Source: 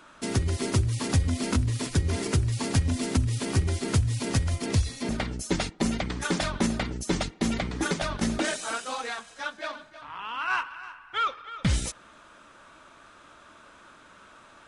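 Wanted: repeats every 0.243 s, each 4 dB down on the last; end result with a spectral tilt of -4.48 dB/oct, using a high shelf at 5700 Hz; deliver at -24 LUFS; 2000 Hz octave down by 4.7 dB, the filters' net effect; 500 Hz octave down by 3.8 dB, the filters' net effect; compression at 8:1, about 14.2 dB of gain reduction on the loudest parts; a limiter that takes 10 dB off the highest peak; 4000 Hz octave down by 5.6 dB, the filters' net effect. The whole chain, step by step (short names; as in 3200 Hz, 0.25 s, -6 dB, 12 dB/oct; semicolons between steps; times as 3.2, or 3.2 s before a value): bell 500 Hz -5 dB; bell 2000 Hz -5 dB; bell 4000 Hz -8 dB; high shelf 5700 Hz +5 dB; compressor 8:1, threshold -34 dBFS; limiter -32 dBFS; feedback echo 0.243 s, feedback 63%, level -4 dB; gain +15.5 dB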